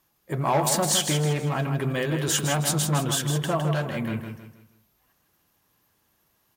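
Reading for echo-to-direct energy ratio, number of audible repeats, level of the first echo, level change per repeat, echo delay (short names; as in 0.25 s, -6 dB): -6.5 dB, 4, -7.0 dB, -9.0 dB, 0.159 s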